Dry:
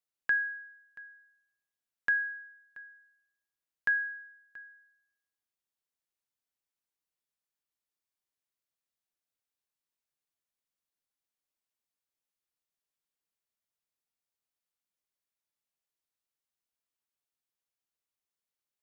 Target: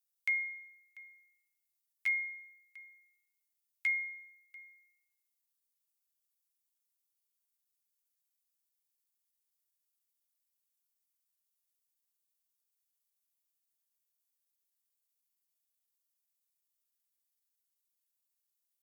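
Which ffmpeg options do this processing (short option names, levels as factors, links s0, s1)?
-af "aderivative,asetrate=57191,aresample=44100,atempo=0.771105,volume=2.51"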